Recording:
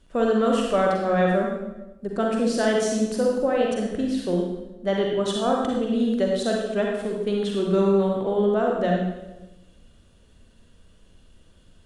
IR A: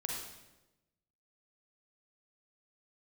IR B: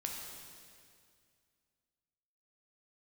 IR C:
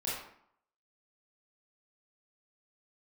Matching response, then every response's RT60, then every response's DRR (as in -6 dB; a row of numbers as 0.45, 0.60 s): A; 1.0, 2.2, 0.65 s; -1.5, -0.5, -8.0 dB